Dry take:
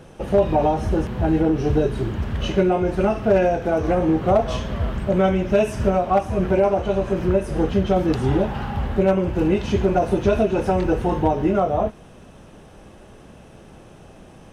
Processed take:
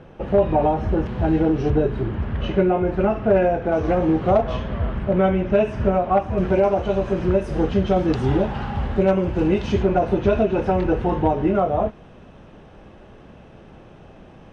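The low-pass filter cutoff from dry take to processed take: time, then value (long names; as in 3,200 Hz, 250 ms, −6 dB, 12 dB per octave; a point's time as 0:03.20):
2,700 Hz
from 0:01.06 4,700 Hz
from 0:01.70 2,500 Hz
from 0:03.72 4,800 Hz
from 0:04.41 2,700 Hz
from 0:06.38 5,900 Hz
from 0:09.83 3,500 Hz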